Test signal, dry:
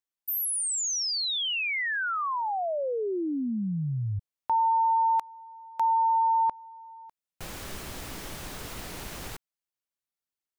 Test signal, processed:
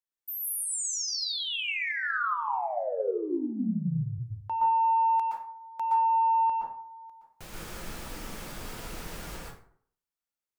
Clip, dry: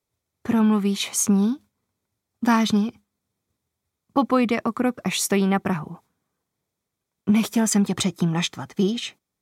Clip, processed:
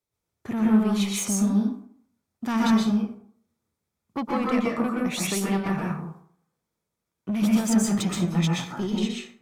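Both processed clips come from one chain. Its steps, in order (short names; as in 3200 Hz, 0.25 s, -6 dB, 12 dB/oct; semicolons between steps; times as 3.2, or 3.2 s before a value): soft clip -16 dBFS; plate-style reverb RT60 0.57 s, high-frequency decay 0.55×, pre-delay 0.11 s, DRR -3.5 dB; gain -6 dB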